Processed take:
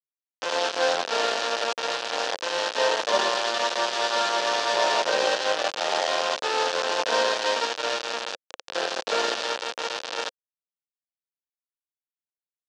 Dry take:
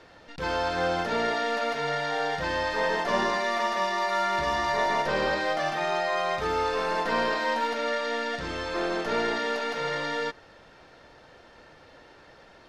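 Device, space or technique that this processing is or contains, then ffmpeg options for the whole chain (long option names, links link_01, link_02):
hand-held game console: -af "acrusher=bits=3:mix=0:aa=0.000001,highpass=480,equalizer=frequency=520:width_type=q:width=4:gain=6,equalizer=frequency=1200:width_type=q:width=4:gain=-3,equalizer=frequency=2100:width_type=q:width=4:gain=-9,lowpass=frequency=5900:width=0.5412,lowpass=frequency=5900:width=1.3066,volume=3dB"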